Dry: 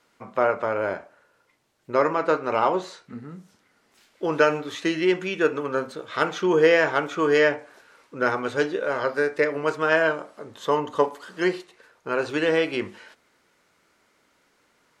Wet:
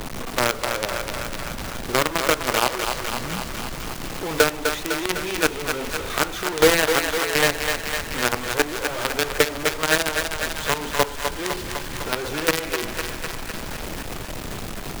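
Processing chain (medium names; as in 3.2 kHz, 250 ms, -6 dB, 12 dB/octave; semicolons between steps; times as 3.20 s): phaser 1.2 Hz, delay 3.7 ms, feedback 34%; added noise brown -36 dBFS; companded quantiser 2-bit; on a send: thinning echo 252 ms, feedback 65%, high-pass 420 Hz, level -6.5 dB; on the sum: three bands compressed up and down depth 40%; trim -5.5 dB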